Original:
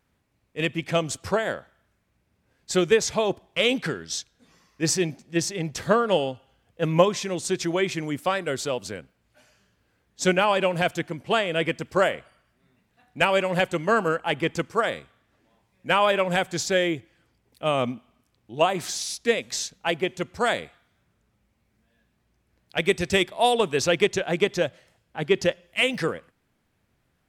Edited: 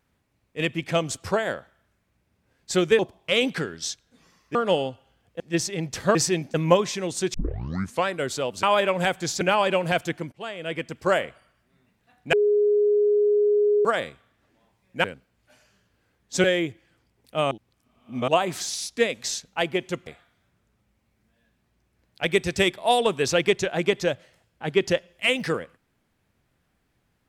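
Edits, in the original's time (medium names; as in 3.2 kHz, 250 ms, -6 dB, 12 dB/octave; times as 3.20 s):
2.99–3.27 s: delete
4.83–5.22 s: swap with 5.97–6.82 s
7.62 s: tape start 0.71 s
8.91–10.31 s: swap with 15.94–16.72 s
11.22–12.09 s: fade in, from -19.5 dB
13.23–14.75 s: bleep 415 Hz -16.5 dBFS
17.79–18.56 s: reverse
20.35–20.61 s: delete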